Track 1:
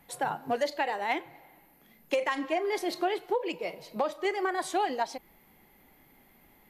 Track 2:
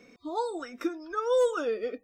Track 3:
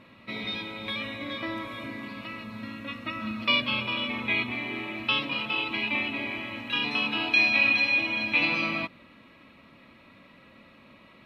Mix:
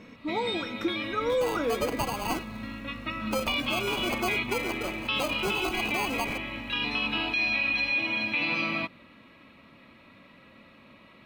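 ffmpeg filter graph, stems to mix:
-filter_complex "[0:a]aeval=exprs='val(0)+0.00631*(sin(2*PI*50*n/s)+sin(2*PI*2*50*n/s)/2+sin(2*PI*3*50*n/s)/3+sin(2*PI*4*50*n/s)/4+sin(2*PI*5*50*n/s)/5)':c=same,equalizer=f=5.1k:t=o:w=0.75:g=12.5,acrusher=samples=24:mix=1:aa=0.000001,adelay=1200,volume=-1.5dB[a];[1:a]bass=f=250:g=10,treble=f=4k:g=-3,volume=1dB[b];[2:a]volume=0dB[c];[a][b][c]amix=inputs=3:normalize=0,alimiter=limit=-19dB:level=0:latency=1:release=88"

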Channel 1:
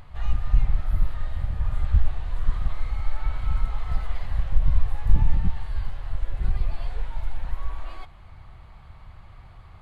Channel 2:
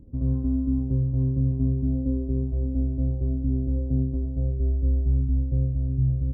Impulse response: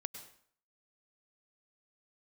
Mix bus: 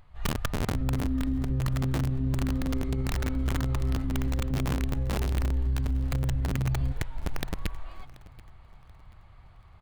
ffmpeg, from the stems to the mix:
-filter_complex "[0:a]dynaudnorm=f=140:g=3:m=4dB,aeval=exprs='(mod(4.22*val(0)+1,2)-1)/4.22':c=same,volume=-10.5dB,asplit=2[a][b];[b]volume=-21dB[c];[1:a]adelay=600,volume=-1.5dB,asplit=2[d][e];[e]volume=-22dB[f];[c][f]amix=inputs=2:normalize=0,aecho=0:1:733|1466|2199|2932|3665:1|0.32|0.102|0.0328|0.0105[g];[a][d][g]amix=inputs=3:normalize=0,alimiter=limit=-21dB:level=0:latency=1:release=23"

